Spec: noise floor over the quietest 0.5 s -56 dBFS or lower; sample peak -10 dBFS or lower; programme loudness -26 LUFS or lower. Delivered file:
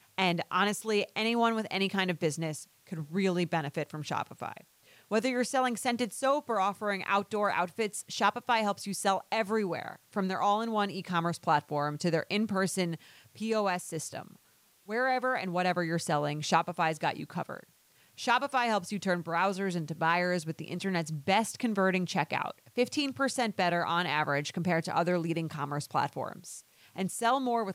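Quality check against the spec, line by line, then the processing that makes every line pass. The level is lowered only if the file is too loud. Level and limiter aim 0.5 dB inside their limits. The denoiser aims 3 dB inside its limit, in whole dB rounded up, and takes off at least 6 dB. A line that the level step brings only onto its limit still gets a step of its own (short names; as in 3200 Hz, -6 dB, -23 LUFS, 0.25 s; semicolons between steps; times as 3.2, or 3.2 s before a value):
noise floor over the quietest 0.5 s -65 dBFS: OK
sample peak -12.5 dBFS: OK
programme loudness -30.5 LUFS: OK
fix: none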